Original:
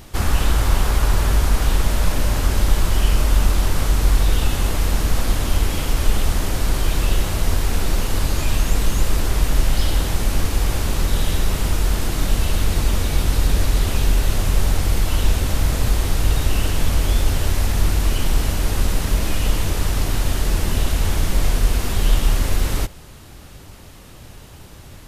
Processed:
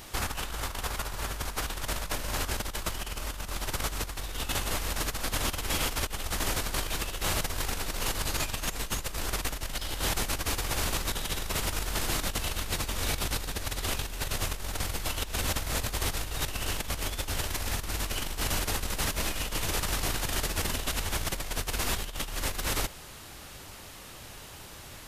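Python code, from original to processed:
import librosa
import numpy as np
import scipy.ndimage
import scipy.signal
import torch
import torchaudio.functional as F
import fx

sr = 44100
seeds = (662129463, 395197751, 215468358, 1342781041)

y = fx.low_shelf(x, sr, hz=420.0, db=-11.0)
y = fx.over_compress(y, sr, threshold_db=-28.0, ratio=-0.5)
y = y * librosa.db_to_amplitude(-2.5)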